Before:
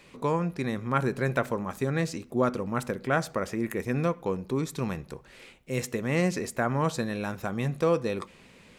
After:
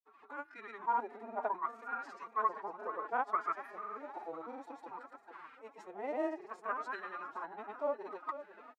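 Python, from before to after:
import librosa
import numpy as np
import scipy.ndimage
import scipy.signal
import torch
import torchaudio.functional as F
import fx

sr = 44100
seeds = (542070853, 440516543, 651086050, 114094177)

p1 = fx.wah_lfo(x, sr, hz=0.61, low_hz=740.0, high_hz=1500.0, q=11.0)
p2 = fx.spec_repair(p1, sr, seeds[0], start_s=3.58, length_s=0.9, low_hz=860.0, high_hz=8500.0, source='both')
p3 = p2 + fx.echo_feedback(p2, sr, ms=495, feedback_pct=58, wet_db=-12.5, dry=0)
p4 = fx.granulator(p3, sr, seeds[1], grain_ms=100.0, per_s=20.0, spray_ms=100.0, spread_st=0)
p5 = fx.pitch_keep_formants(p4, sr, semitones=9.5)
y = F.gain(torch.from_numpy(p5), 9.5).numpy()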